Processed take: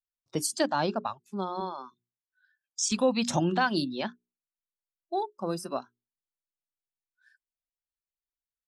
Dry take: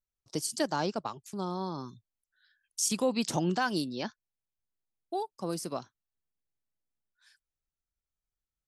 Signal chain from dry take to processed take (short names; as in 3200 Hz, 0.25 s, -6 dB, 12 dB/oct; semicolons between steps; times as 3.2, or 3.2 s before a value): 1.6–2.92 three-band isolator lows -14 dB, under 320 Hz, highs -16 dB, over 7700 Hz; notches 60/120/180/240/300/360/420 Hz; spectral noise reduction 18 dB; gain +4 dB